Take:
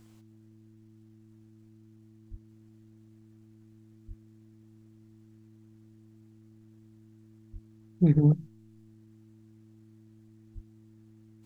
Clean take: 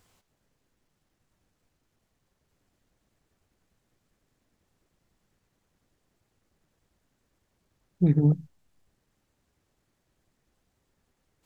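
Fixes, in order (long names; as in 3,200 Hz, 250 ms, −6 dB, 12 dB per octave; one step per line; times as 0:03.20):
hum removal 109.5 Hz, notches 3
high-pass at the plosives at 0:02.30/0:04.07/0:07.52/0:08.13/0:10.54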